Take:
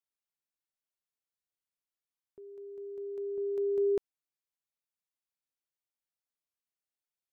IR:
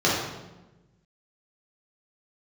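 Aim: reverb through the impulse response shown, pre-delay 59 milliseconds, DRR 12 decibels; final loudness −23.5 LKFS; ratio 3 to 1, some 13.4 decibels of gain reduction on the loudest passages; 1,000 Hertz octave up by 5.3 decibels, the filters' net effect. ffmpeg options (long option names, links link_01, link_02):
-filter_complex "[0:a]equalizer=frequency=1000:width_type=o:gain=7,acompressor=threshold=-44dB:ratio=3,asplit=2[link_01][link_02];[1:a]atrim=start_sample=2205,adelay=59[link_03];[link_02][link_03]afir=irnorm=-1:irlink=0,volume=-29.5dB[link_04];[link_01][link_04]amix=inputs=2:normalize=0,volume=28.5dB"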